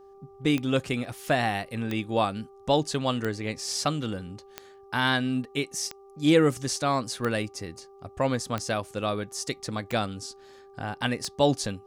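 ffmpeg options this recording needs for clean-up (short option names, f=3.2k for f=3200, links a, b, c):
-af "adeclick=t=4,bandreject=f=393.8:t=h:w=4,bandreject=f=787.6:t=h:w=4,bandreject=f=1.1814k:t=h:w=4"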